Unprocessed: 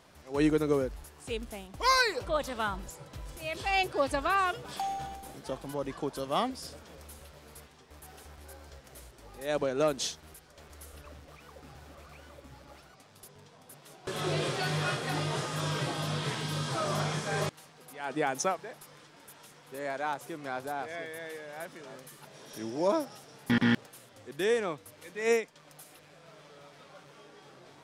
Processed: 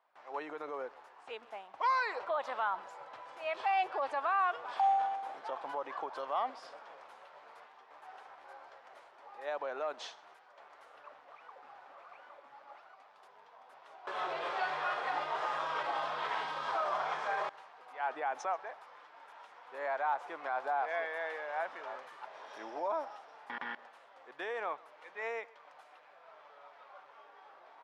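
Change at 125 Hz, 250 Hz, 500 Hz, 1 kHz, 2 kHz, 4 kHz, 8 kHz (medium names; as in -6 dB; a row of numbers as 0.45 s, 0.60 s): under -30 dB, -21.5 dB, -7.5 dB, +1.0 dB, -4.0 dB, -11.5 dB, under -20 dB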